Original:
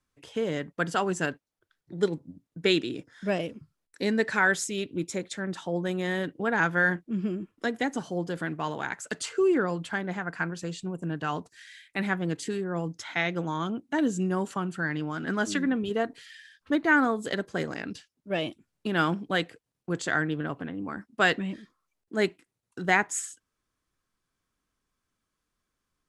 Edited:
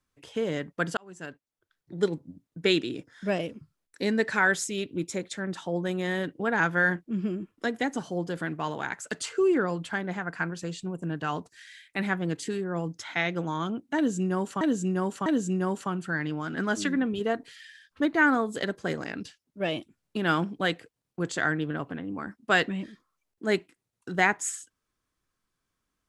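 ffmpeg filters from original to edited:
-filter_complex "[0:a]asplit=4[a][b][c][d];[a]atrim=end=0.97,asetpts=PTS-STARTPTS,afade=t=out:st=0.966:d=0.004:c=hsin[e];[b]atrim=start=0.97:end=14.612,asetpts=PTS-STARTPTS,afade=t=in:d=0.99[f];[c]atrim=start=13.958:end=14.612[g];[d]atrim=start=13.958[h];[e][f]concat=n=2:v=0:a=1[i];[i][g]acrossfade=d=0.004:c1=hsin:c2=hsin[j];[j][h]acrossfade=d=0.004:c1=hsin:c2=hsin"

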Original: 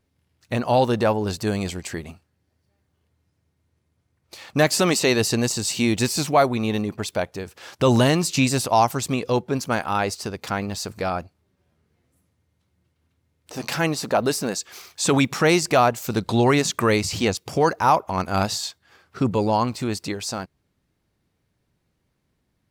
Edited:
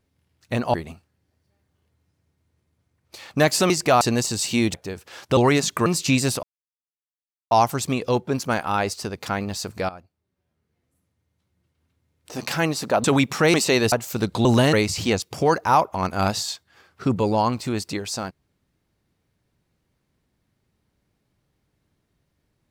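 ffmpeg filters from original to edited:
-filter_complex "[0:a]asplit=14[a][b][c][d][e][f][g][h][i][j][k][l][m][n];[a]atrim=end=0.742[o];[b]atrim=start=1.928:end=4.892[p];[c]atrim=start=15.548:end=15.862[q];[d]atrim=start=5.268:end=6.002[r];[e]atrim=start=7.238:end=7.872[s];[f]atrim=start=16.388:end=16.882[t];[g]atrim=start=8.148:end=8.72,asetpts=PTS-STARTPTS,afade=t=out:st=0.568:d=0.004:c=hsin,apad=pad_dur=1.08[u];[h]atrim=start=8.72:end=11.1,asetpts=PTS-STARTPTS,afade=t=in:d=0.004:c=hsin,afade=t=out:st=2.376:d=0.004:c=hsin:silence=0.177828[v];[i]atrim=start=11.1:end=14.252,asetpts=PTS-STARTPTS,afade=t=in:d=2.5:silence=0.177828[w];[j]atrim=start=15.048:end=15.552[x];[k]atrim=start=4.888:end=5.272[y];[l]atrim=start=15.858:end=16.392[z];[m]atrim=start=7.868:end=8.152[aa];[n]atrim=start=16.878[ab];[o][p]acrossfade=d=0.004:c1=hsin:c2=hsin[ac];[ac][q]acrossfade=d=0.004:c1=hsin:c2=hsin[ad];[ad][r]acrossfade=d=0.004:c1=hsin:c2=hsin[ae];[ae][s]acrossfade=d=0.004:c1=hsin:c2=hsin[af];[af][t]acrossfade=d=0.004:c1=hsin:c2=hsin[ag];[u][v][w]concat=n=3:v=0:a=1[ah];[ag][ah]acrossfade=d=0.004:c1=hsin:c2=hsin[ai];[ai][x]acrossfade=d=0.004:c1=hsin:c2=hsin[aj];[aj][y]acrossfade=d=0.004:c1=hsin:c2=hsin[ak];[ak][z]acrossfade=d=0.004:c1=hsin:c2=hsin[al];[al][aa]acrossfade=d=0.004:c1=hsin:c2=hsin[am];[am][ab]acrossfade=d=0.004:c1=hsin:c2=hsin"

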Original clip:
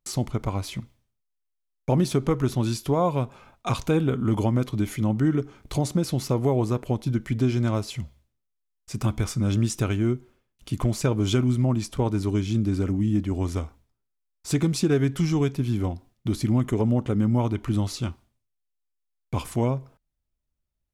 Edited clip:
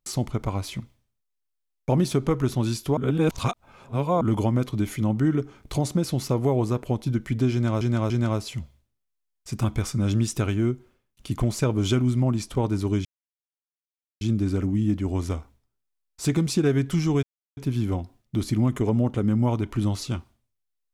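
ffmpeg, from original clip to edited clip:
-filter_complex "[0:a]asplit=7[a][b][c][d][e][f][g];[a]atrim=end=2.972[h];[b]atrim=start=2.968:end=4.212,asetpts=PTS-STARTPTS,areverse[i];[c]atrim=start=4.208:end=7.812[j];[d]atrim=start=7.518:end=7.812[k];[e]atrim=start=7.518:end=12.47,asetpts=PTS-STARTPTS,afade=t=out:st=4.948:d=0.004:c=hsin,apad=pad_dur=1.16[l];[f]atrim=start=12.47:end=15.49,asetpts=PTS-STARTPTS,afade=t=in:d=0.004:c=hsin,afade=t=out:st=3.016:d=0.004:c=hsin,apad=pad_dur=0.34[m];[g]atrim=start=15.49,asetpts=PTS-STARTPTS,afade=t=in:d=0.004:c=hsin[n];[h][i]acrossfade=d=0.004:c1=hsin:c2=hsin[o];[o][j]acrossfade=d=0.004:c1=hsin:c2=hsin[p];[p][k]acrossfade=d=0.004:c1=hsin:c2=hsin[q];[l][m][n]concat=n=3:v=0:a=1[r];[q][r]acrossfade=d=0.004:c1=hsin:c2=hsin"

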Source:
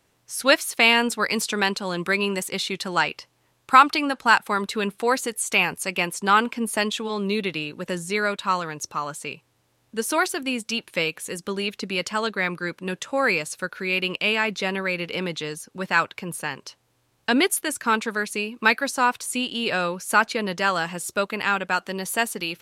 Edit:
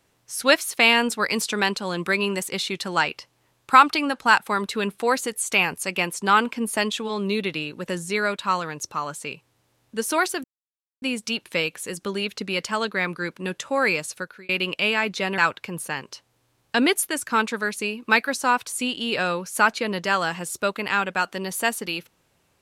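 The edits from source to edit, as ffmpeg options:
-filter_complex "[0:a]asplit=4[a][b][c][d];[a]atrim=end=10.44,asetpts=PTS-STARTPTS,afade=t=out:st=10.436:d=0.004:c=hsin,apad=pad_dur=0.58[e];[b]atrim=start=10.44:end=13.91,asetpts=PTS-STARTPTS,afade=t=in:d=0.004:c=hsin,afade=t=out:st=3.1:d=0.37[f];[c]atrim=start=13.91:end=14.802,asetpts=PTS-STARTPTS,afade=t=in:d=0.004:c=hsin[g];[d]atrim=start=15.918[h];[e][f][g]concat=n=3:v=0:a=1[i];[i][h]acrossfade=d=0.004:c1=hsin:c2=hsin"

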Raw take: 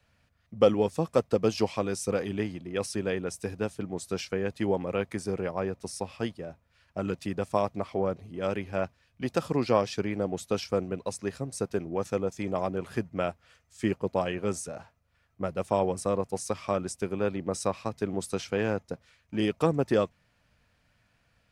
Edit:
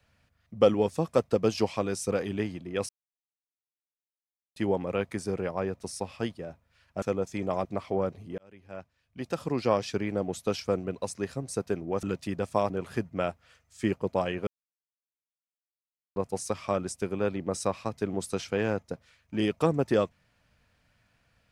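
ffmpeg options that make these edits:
-filter_complex "[0:a]asplit=10[a][b][c][d][e][f][g][h][i][j];[a]atrim=end=2.89,asetpts=PTS-STARTPTS,afade=t=out:st=2.886:d=0.004:c=hsin[k];[b]atrim=start=2.89:end=4.56,asetpts=PTS-STARTPTS,volume=0[l];[c]atrim=start=4.56:end=7.022,asetpts=PTS-STARTPTS,afade=t=in:d=0.004:c=hsin[m];[d]atrim=start=12.068:end=12.702[n];[e]atrim=start=7.688:end=8.42,asetpts=PTS-STARTPTS,afade=t=out:st=0.728:d=0.004:c=hsin[o];[f]atrim=start=8.42:end=12.072,asetpts=PTS-STARTPTS,afade=t=in:d=1.53[p];[g]atrim=start=7.018:end=7.692[q];[h]atrim=start=12.698:end=14.47,asetpts=PTS-STARTPTS,afade=t=out:st=1.768:d=0.004:c=hsin[r];[i]atrim=start=14.47:end=16.16,asetpts=PTS-STARTPTS,volume=0[s];[j]atrim=start=16.16,asetpts=PTS-STARTPTS,afade=t=in:d=0.004:c=hsin[t];[k][l][m]concat=n=3:v=0:a=1[u];[u][n]acrossfade=d=0.004:c1=hsin:c2=hsin[v];[o][p]concat=n=2:v=0:a=1[w];[v][w]acrossfade=d=0.004:c1=hsin:c2=hsin[x];[x][q]acrossfade=d=0.004:c1=hsin:c2=hsin[y];[r][s][t]concat=n=3:v=0:a=1[z];[y][z]acrossfade=d=0.004:c1=hsin:c2=hsin"

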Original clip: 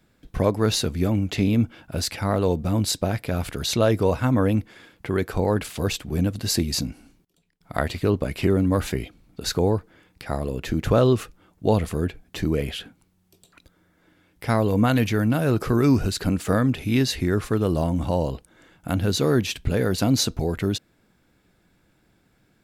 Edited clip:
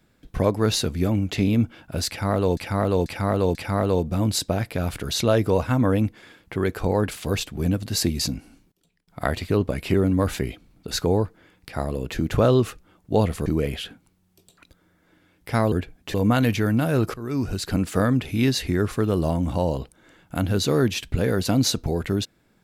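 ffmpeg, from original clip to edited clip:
-filter_complex "[0:a]asplit=8[a][b][c][d][e][f][g][h];[a]atrim=end=2.572[i];[b]atrim=start=2.078:end=2.572[j];[c]atrim=start=2.078:end=2.572[k];[d]atrim=start=2.078:end=11.992[l];[e]atrim=start=12.408:end=14.672[m];[f]atrim=start=11.988:end=12.412[n];[g]atrim=start=14.668:end=15.67,asetpts=PTS-STARTPTS,afade=t=out:st=0.998:d=0.004:c=hsin:silence=0.1[o];[h]atrim=start=15.67,asetpts=PTS-STARTPTS,afade=t=in:d=0.63:silence=0.1[p];[i][j]acrossfade=d=0.004:c1=hsin:c2=hsin[q];[q][k]acrossfade=d=0.004:c1=hsin:c2=hsin[r];[r][l]acrossfade=d=0.004:c1=hsin:c2=hsin[s];[s][m]acrossfade=d=0.004:c1=hsin:c2=hsin[t];[t][n]acrossfade=d=0.004:c1=hsin:c2=hsin[u];[o][p]concat=n=2:v=0:a=1[v];[u][v]acrossfade=d=0.004:c1=hsin:c2=hsin"

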